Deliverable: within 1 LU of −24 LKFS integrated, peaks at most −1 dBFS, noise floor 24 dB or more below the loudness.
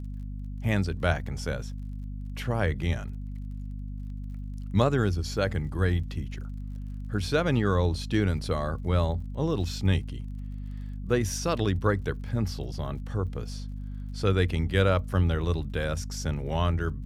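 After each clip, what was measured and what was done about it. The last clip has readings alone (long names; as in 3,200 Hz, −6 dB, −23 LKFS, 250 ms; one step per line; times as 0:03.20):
crackle rate 38 per second; mains hum 50 Hz; hum harmonics up to 250 Hz; level of the hum −33 dBFS; integrated loudness −29.5 LKFS; sample peak −7.5 dBFS; target loudness −24.0 LKFS
→ click removal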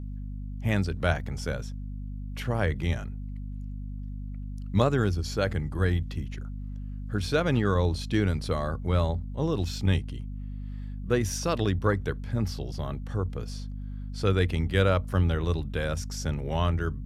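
crackle rate 0.12 per second; mains hum 50 Hz; hum harmonics up to 250 Hz; level of the hum −33 dBFS
→ mains-hum notches 50/100/150/200/250 Hz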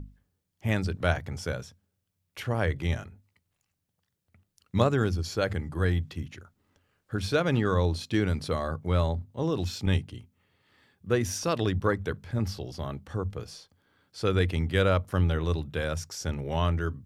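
mains hum none found; integrated loudness −29.0 LKFS; sample peak −7.5 dBFS; target loudness −24.0 LKFS
→ level +5 dB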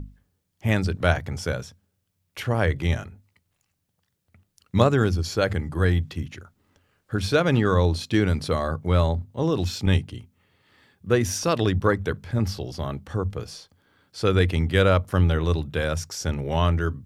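integrated loudness −24.0 LKFS; sample peak −2.5 dBFS; background noise floor −75 dBFS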